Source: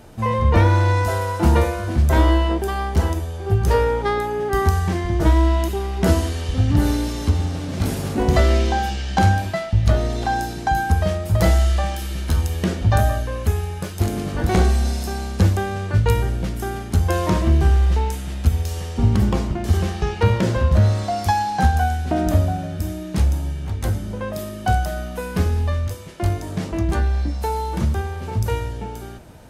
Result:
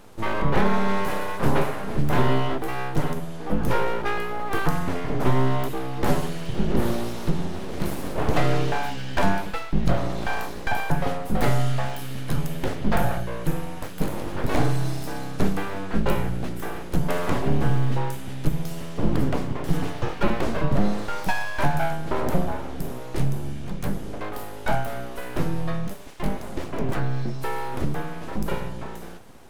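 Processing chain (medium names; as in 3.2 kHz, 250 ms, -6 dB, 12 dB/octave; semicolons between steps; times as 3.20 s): full-wave rectifier; dynamic bell 6.2 kHz, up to -6 dB, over -48 dBFS, Q 0.83; trim -2 dB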